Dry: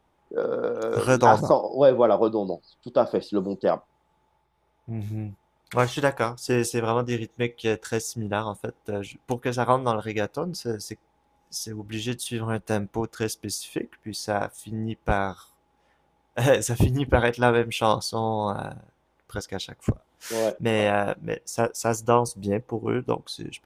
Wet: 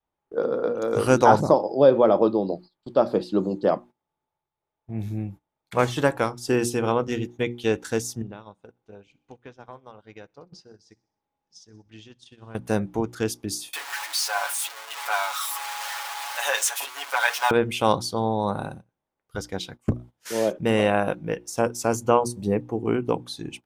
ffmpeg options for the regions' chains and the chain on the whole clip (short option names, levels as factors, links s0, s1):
-filter_complex "[0:a]asettb=1/sr,asplit=3[s0][s1][s2];[s0]atrim=end=8.224[s3];[s1]atrim=start=8.22:end=12.55,asetpts=PTS-STARTPTS,afade=t=in:d=0.004:c=qsin,afade=t=out:st=4.326:d=0.004:c=qsin,lowpass=f=6300:w=0.5412,lowpass=f=6300:w=1.3066,acompressor=threshold=0.0126:ratio=6:attack=3.2:release=140:knee=1:detection=peak,aecho=1:1:64|128|192|256|320:0.1|0.059|0.0348|0.0205|0.0121,atrim=end_sample=190953[s4];[s2]atrim=start=12.546[s5];[s3][s4]acrossfade=d=0.004:c1=hsin:c2=qsin[s6];[s6][s5]acrossfade=d=0.004:c1=qsin:c2=hsin,asettb=1/sr,asplit=3[s7][s8][s9];[s7]atrim=end=13.734[s10];[s8]atrim=start=13.73:end=17.51,asetpts=PTS-STARTPTS,afade=t=in:d=0.004:c=qsin,afade=t=out:st=3.776:d=0.004:c=qsin,aeval=exprs='val(0)+0.5*0.0473*sgn(val(0))':c=same,highpass=f=860:w=0.5412,highpass=f=860:w=1.3066,aecho=1:1:7.1:0.91,atrim=end_sample=166698[s11];[s9]atrim=start=17.506[s12];[s10][s11]acrossfade=d=0.004:c1=hsin:c2=qsin[s13];[s13][s12]acrossfade=d=0.004:c1=qsin:c2=hsin,bandreject=f=60:t=h:w=6,bandreject=f=120:t=h:w=6,bandreject=f=180:t=h:w=6,bandreject=f=240:t=h:w=6,bandreject=f=300:t=h:w=6,bandreject=f=360:t=h:w=6,adynamicequalizer=threshold=0.0158:dfrequency=250:dqfactor=0.88:tfrequency=250:tqfactor=0.88:attack=5:release=100:ratio=0.375:range=2:mode=boostabove:tftype=bell,agate=range=0.141:threshold=0.01:ratio=16:detection=peak"